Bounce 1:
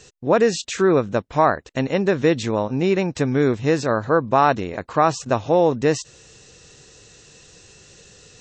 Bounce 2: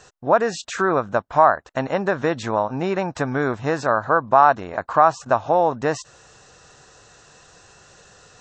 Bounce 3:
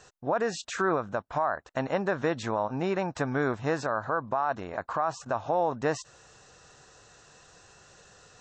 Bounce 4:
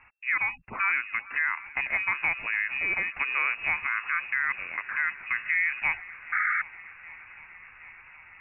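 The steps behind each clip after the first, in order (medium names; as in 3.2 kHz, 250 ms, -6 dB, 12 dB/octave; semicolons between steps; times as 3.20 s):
high-order bell 1 kHz +11.5 dB; in parallel at +0.5 dB: compression, threshold -15 dBFS, peak gain reduction 14.5 dB; on the sum: trim -10 dB
peak limiter -11.5 dBFS, peak gain reduction 10 dB; trim -5.5 dB
shuffle delay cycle 768 ms, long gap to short 1.5:1, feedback 70%, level -19.5 dB; painted sound noise, 6.32–6.62 s, 430–1500 Hz -26 dBFS; frequency inversion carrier 2.7 kHz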